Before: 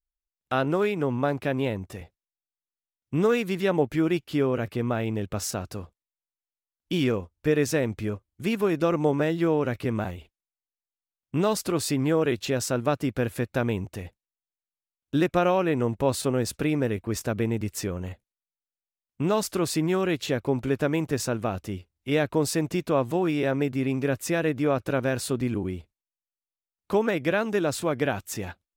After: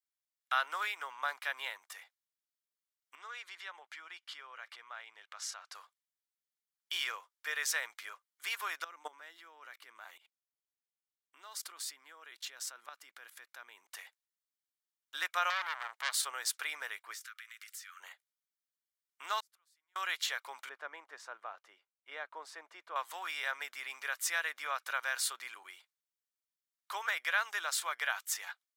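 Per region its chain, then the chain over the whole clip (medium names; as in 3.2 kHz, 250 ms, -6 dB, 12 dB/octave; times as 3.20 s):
3.15–5.75 s: distance through air 67 m + compression 2:1, threshold -38 dBFS
8.84–13.91 s: level held to a coarse grid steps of 20 dB + small resonant body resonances 210/300 Hz, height 10 dB, ringing for 25 ms
15.50–16.15 s: high-pass 180 Hz 6 dB/octave + transformer saturation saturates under 3 kHz
17.14–18.00 s: steep high-pass 1.2 kHz 72 dB/octave + compression, threshold -44 dBFS
19.40–19.96 s: inverted gate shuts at -22 dBFS, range -41 dB + peaking EQ 12 kHz +3.5 dB 0.4 oct
20.69–22.96 s: band-pass filter 330 Hz, Q 0.62 + bass shelf 320 Hz +4.5 dB
whole clip: high-pass 1.1 kHz 24 dB/octave; band-stop 2.6 kHz, Q 8.7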